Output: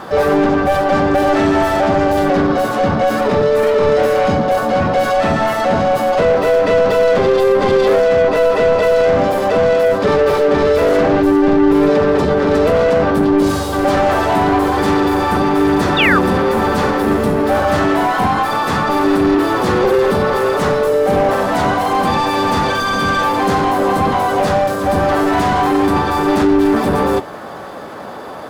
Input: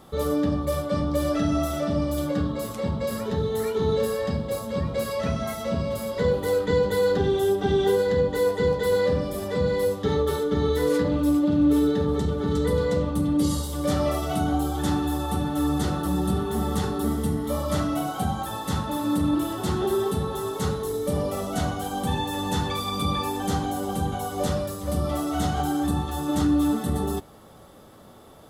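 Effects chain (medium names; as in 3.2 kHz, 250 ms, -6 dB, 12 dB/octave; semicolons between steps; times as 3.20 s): overdrive pedal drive 28 dB, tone 1 kHz, clips at -9.5 dBFS; painted sound fall, 15.98–16.19 s, 1.1–2.9 kHz -18 dBFS; harmony voices +5 st -3 dB; trim +3 dB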